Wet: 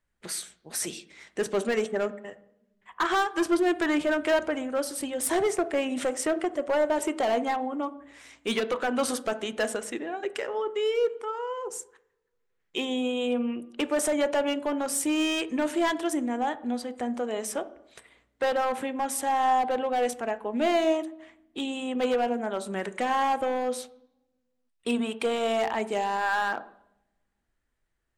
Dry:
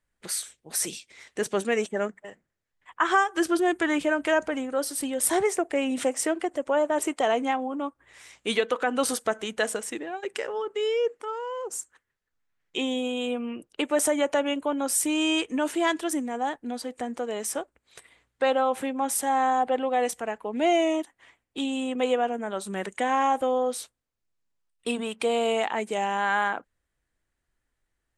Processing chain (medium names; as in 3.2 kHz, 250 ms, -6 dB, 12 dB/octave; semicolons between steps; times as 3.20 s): treble shelf 6 kHz -5.5 dB; overload inside the chain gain 20.5 dB; on a send: reverberation RT60 0.75 s, pre-delay 3 ms, DRR 12 dB